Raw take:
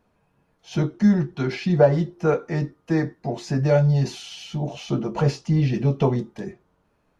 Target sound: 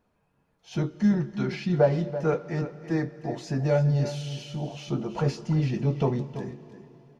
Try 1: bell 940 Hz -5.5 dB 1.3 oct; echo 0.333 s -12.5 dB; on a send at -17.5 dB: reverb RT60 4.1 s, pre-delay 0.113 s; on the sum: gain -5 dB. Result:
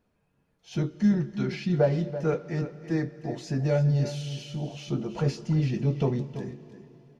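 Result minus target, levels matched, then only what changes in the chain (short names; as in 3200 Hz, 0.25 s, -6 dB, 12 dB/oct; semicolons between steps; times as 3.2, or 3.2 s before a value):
1000 Hz band -3.5 dB
remove: bell 940 Hz -5.5 dB 1.3 oct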